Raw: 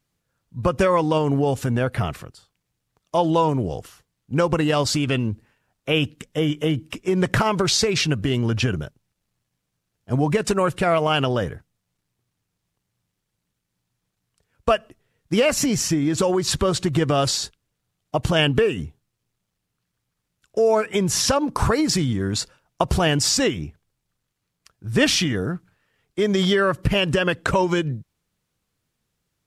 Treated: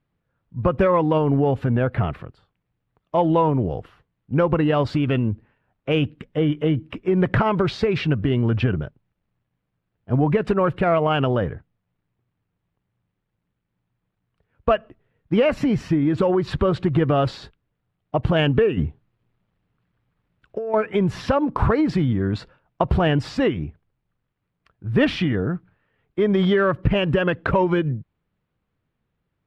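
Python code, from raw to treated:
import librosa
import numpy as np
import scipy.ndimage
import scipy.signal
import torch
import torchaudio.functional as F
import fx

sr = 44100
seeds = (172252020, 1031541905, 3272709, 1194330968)

p1 = fx.air_absorb(x, sr, metres=470.0)
p2 = 10.0 ** (-15.0 / 20.0) * np.tanh(p1 / 10.0 ** (-15.0 / 20.0))
p3 = p1 + (p2 * 10.0 ** (-9.0 / 20.0))
y = fx.over_compress(p3, sr, threshold_db=-24.0, ratio=-1.0, at=(18.77, 20.74))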